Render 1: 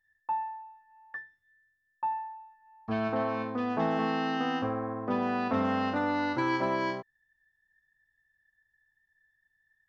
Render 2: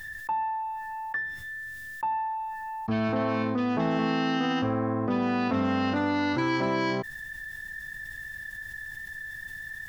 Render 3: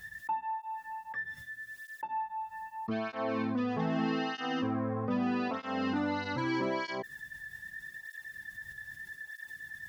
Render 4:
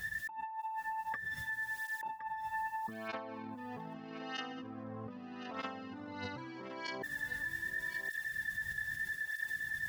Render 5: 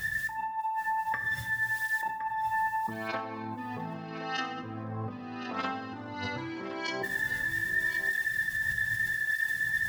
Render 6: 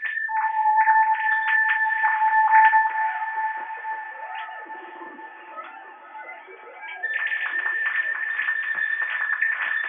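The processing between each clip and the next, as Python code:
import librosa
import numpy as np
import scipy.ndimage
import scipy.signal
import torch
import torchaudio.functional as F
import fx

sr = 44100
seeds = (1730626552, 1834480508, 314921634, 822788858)

y1 = fx.peak_eq(x, sr, hz=850.0, db=-7.0, octaves=2.5)
y1 = fx.env_flatten(y1, sr, amount_pct=70)
y1 = F.gain(torch.from_numpy(y1), 4.0).numpy()
y2 = fx.flanger_cancel(y1, sr, hz=0.8, depth_ms=3.4)
y2 = F.gain(torch.from_numpy(y2), -3.0).numpy()
y3 = fx.over_compress(y2, sr, threshold_db=-42.0, ratio=-1.0)
y3 = y3 + 10.0 ** (-12.0 / 20.0) * np.pad(y3, (int(1066 * sr / 1000.0), 0))[:len(y3)]
y4 = fx.rev_fdn(y3, sr, rt60_s=0.82, lf_ratio=1.3, hf_ratio=0.8, size_ms=52.0, drr_db=5.5)
y4 = F.gain(torch.from_numpy(y4), 7.0).numpy()
y5 = fx.sine_speech(y4, sr)
y5 = fx.echo_diffused(y5, sr, ms=492, feedback_pct=65, wet_db=-10)
y5 = fx.rev_gated(y5, sr, seeds[0], gate_ms=90, shape='falling', drr_db=-0.5)
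y5 = F.gain(torch.from_numpy(y5), 4.5).numpy()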